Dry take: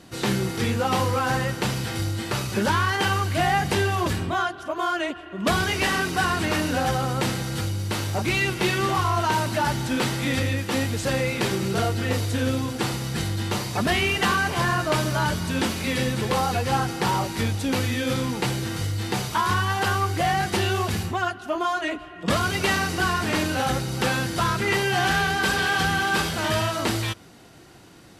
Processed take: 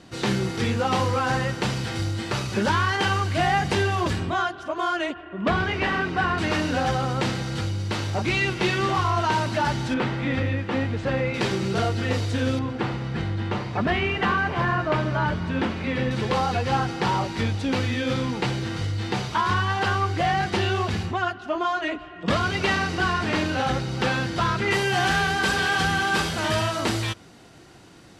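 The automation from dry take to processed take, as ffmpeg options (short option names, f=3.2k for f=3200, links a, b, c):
-af "asetnsamples=n=441:p=0,asendcmd='5.14 lowpass f 2600;6.38 lowpass f 5700;9.94 lowpass f 2400;11.34 lowpass f 5800;12.59 lowpass f 2400;16.11 lowpass f 4800;24.71 lowpass f 9200',lowpass=6.9k"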